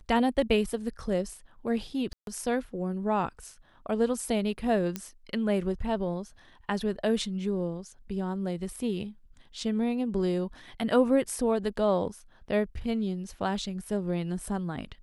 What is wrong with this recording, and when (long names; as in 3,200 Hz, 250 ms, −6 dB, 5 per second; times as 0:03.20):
0:02.13–0:02.27: drop-out 142 ms
0:04.96: click −17 dBFS